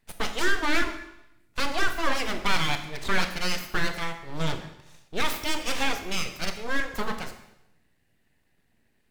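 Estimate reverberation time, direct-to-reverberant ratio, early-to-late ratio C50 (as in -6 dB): 0.85 s, 7.0 dB, 9.5 dB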